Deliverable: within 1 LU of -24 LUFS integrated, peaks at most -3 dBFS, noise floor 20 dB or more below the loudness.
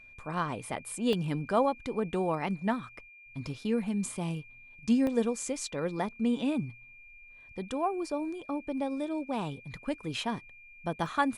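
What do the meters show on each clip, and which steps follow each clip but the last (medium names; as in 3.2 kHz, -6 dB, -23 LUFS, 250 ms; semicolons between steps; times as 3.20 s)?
dropouts 3; longest dropout 1.1 ms; steady tone 2.4 kHz; tone level -51 dBFS; loudness -32.5 LUFS; peak level -14.0 dBFS; loudness target -24.0 LUFS
-> interpolate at 1.13/5.07/11.06 s, 1.1 ms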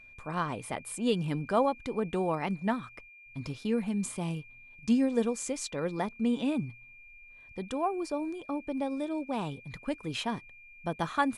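dropouts 0; steady tone 2.4 kHz; tone level -51 dBFS
-> band-stop 2.4 kHz, Q 30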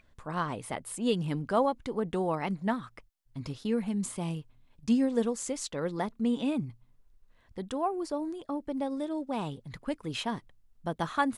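steady tone not found; loudness -32.5 LUFS; peak level -13.5 dBFS; loudness target -24.0 LUFS
-> trim +8.5 dB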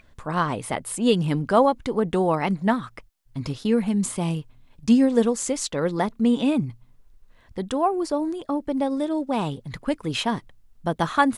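loudness -24.0 LUFS; peak level -5.0 dBFS; noise floor -56 dBFS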